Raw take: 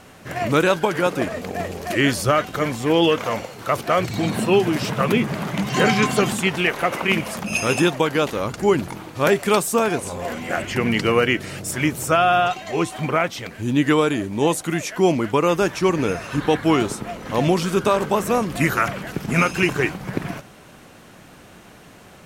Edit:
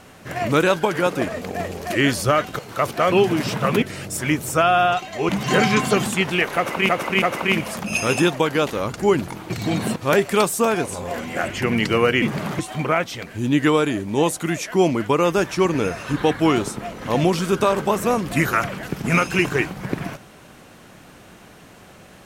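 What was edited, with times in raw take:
0:02.59–0:03.49: remove
0:04.02–0:04.48: move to 0:09.10
0:05.18–0:05.55: swap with 0:11.36–0:12.83
0:06.82–0:07.15: repeat, 3 plays

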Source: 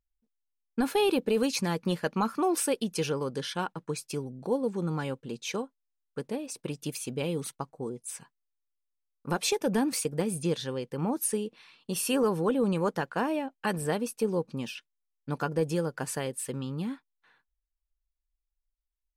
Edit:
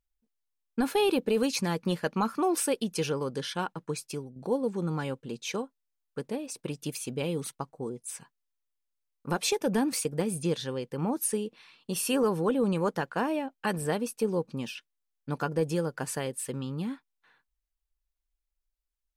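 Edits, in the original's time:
0:04.05–0:04.36: fade out, to −9 dB

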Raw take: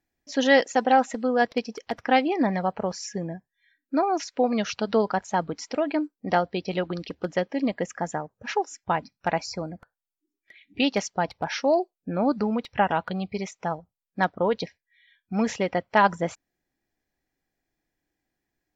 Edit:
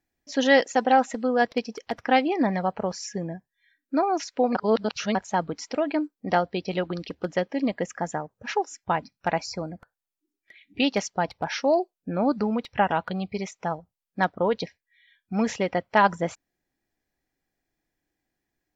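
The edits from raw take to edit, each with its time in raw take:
0:04.55–0:05.15: reverse

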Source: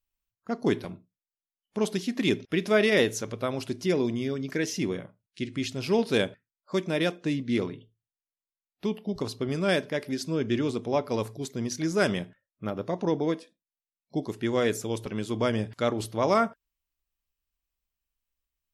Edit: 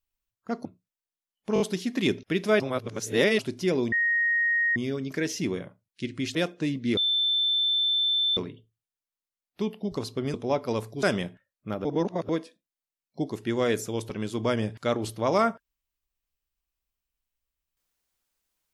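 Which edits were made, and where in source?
0:00.65–0:00.93: remove
0:01.82: stutter 0.02 s, 4 plays
0:02.82–0:03.61: reverse
0:04.14: insert tone 1,870 Hz −21 dBFS 0.84 s
0:05.73–0:06.99: remove
0:07.61: insert tone 3,540 Hz −21.5 dBFS 1.40 s
0:09.58–0:10.77: remove
0:11.46–0:11.99: remove
0:12.81–0:13.25: reverse

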